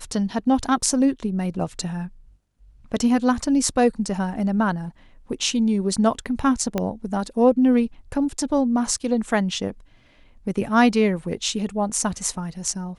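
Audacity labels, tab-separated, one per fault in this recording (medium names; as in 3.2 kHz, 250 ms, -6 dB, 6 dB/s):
6.780000	6.780000	pop -10 dBFS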